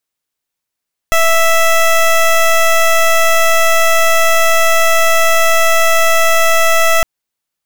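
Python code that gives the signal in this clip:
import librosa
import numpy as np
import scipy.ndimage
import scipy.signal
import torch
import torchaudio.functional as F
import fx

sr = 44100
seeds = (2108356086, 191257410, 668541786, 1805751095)

y = fx.pulse(sr, length_s=5.91, hz=659.0, level_db=-9.5, duty_pct=15)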